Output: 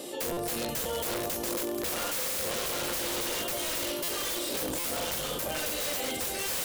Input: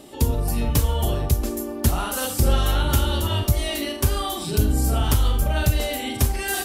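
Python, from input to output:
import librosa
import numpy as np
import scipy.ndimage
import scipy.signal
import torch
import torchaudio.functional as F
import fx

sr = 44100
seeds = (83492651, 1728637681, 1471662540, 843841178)

y = fx.lower_of_two(x, sr, delay_ms=3.2, at=(2.91, 5.48))
y = fx.high_shelf(y, sr, hz=2300.0, db=8.0)
y = fx.comb_fb(y, sr, f0_hz=350.0, decay_s=0.19, harmonics='all', damping=0.0, mix_pct=70)
y = fx.echo_heads(y, sr, ms=240, heads='second and third', feedback_pct=43, wet_db=-16.5)
y = 10.0 ** (-23.5 / 20.0) * (np.abs((y / 10.0 ** (-23.5 / 20.0) + 3.0) % 4.0 - 2.0) - 1.0)
y = scipy.signal.sosfilt(scipy.signal.butter(2, 170.0, 'highpass', fs=sr, output='sos'), y)
y = (np.mod(10.0 ** (27.5 / 20.0) * y + 1.0, 2.0) - 1.0) / 10.0 ** (27.5 / 20.0)
y = fx.peak_eq(y, sr, hz=510.0, db=13.5, octaves=0.3)
y = fx.buffer_glitch(y, sr, at_s=(0.32, 4.03, 4.79), block=256, repeats=8)
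y = fx.env_flatten(y, sr, amount_pct=50)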